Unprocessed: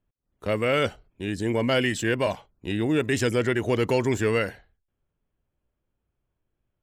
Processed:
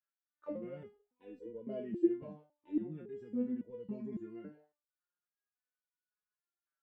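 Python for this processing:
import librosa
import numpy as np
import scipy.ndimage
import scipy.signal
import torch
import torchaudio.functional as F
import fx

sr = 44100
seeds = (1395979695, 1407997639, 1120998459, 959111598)

y = fx.auto_wah(x, sr, base_hz=200.0, top_hz=1500.0, q=5.8, full_db=-21.5, direction='down')
y = fx.spec_box(y, sr, start_s=1.46, length_s=0.65, low_hz=320.0, high_hz=670.0, gain_db=11)
y = fx.resonator_held(y, sr, hz=3.6, low_hz=150.0, high_hz=490.0)
y = F.gain(torch.from_numpy(y), 10.5).numpy()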